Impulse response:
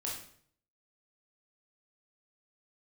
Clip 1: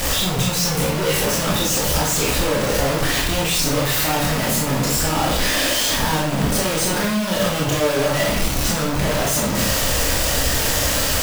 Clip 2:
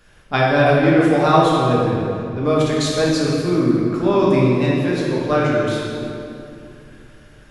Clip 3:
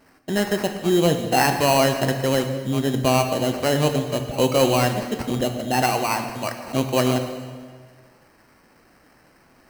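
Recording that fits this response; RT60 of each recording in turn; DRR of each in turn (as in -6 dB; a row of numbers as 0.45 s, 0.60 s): 1; 0.60 s, 2.8 s, 1.7 s; -4.0 dB, -5.5 dB, 5.5 dB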